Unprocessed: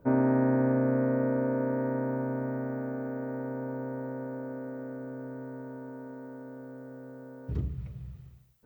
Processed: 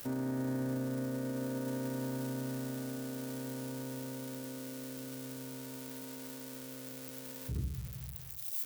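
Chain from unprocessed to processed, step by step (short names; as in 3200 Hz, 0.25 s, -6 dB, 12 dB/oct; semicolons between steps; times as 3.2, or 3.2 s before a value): switching spikes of -29.5 dBFS; limiter -23 dBFS, peak gain reduction 7.5 dB; dynamic EQ 720 Hz, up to -7 dB, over -47 dBFS, Q 0.76; gain -3.5 dB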